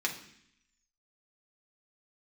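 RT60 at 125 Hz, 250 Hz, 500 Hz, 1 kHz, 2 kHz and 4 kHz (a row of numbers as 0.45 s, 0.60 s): 0.85 s, 0.90 s, 0.65 s, 0.65 s, 0.85 s, 0.85 s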